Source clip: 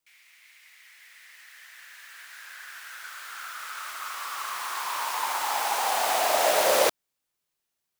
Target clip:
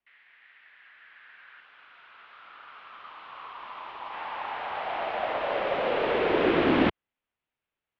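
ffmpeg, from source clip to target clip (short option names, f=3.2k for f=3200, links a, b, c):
-filter_complex "[0:a]asettb=1/sr,asplit=3[a][b][c];[a]atrim=end=1.604[d];[b]atrim=start=1.6:end=4.13,asetpts=PTS-STARTPTS,afade=t=in:d=0.004:c=qsin,afade=t=out:st=2.526:d=0.004:c=qsin,equalizer=f=2k:w=1.8:g=-7[e];[c]atrim=start=4.126[f];[d][e]acrossfade=d=0.004:c1=hsin:c2=qsin[g];[g][f]acrossfade=d=0.004:c1=qsin:c2=hsin,highpass=f=220:t=q:w=0.5412,highpass=f=220:t=q:w=1.307,lowpass=f=3.4k:t=q:w=0.5176,lowpass=f=3.4k:t=q:w=0.7071,lowpass=f=3.4k:t=q:w=1.932,afreqshift=-270"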